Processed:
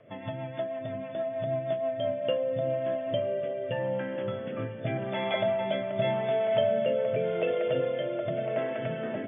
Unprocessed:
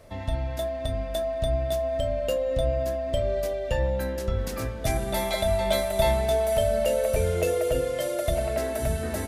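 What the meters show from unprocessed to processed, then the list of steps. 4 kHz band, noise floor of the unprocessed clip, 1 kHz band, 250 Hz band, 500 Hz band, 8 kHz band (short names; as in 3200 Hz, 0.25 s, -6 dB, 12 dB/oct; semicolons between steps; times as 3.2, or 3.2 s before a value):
-5.5 dB, -33 dBFS, -3.5 dB, -1.5 dB, -2.5 dB, under -40 dB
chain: FFT band-pass 100–3500 Hz; rotary speaker horn 6.3 Hz, later 0.85 Hz, at 1.75; diffused feedback echo 0.944 s, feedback 47%, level -15.5 dB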